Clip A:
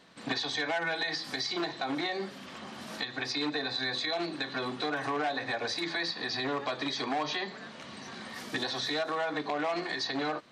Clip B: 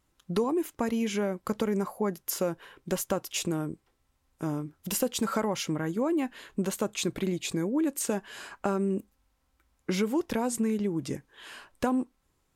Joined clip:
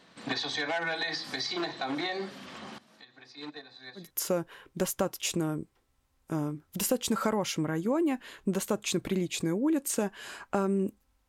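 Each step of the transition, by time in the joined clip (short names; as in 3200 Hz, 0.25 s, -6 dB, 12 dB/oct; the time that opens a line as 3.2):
clip A
2.78–4.11 gate -29 dBFS, range -19 dB
4.03 switch to clip B from 2.14 s, crossfade 0.16 s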